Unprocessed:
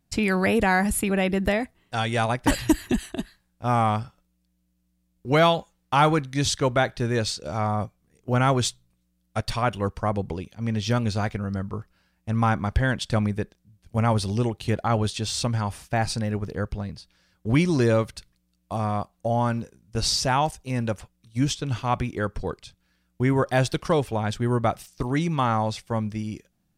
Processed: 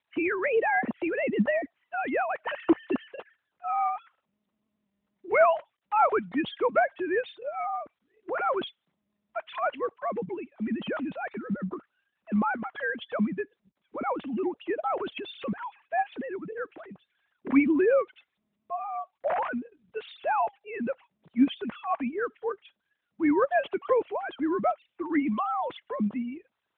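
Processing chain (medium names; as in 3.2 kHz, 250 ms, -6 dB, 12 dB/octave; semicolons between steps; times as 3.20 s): formants replaced by sine waves; trim -4 dB; AMR-NB 12.2 kbps 8 kHz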